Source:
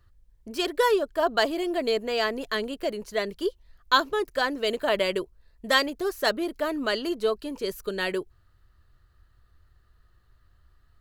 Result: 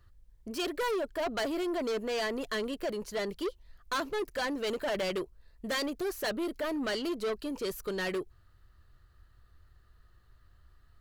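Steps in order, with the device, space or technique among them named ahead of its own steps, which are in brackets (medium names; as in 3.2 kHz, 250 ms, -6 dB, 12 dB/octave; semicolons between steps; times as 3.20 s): saturation between pre-emphasis and de-emphasis (treble shelf 9.1 kHz +8 dB; saturation -28.5 dBFS, distortion -6 dB; treble shelf 9.1 kHz -8 dB)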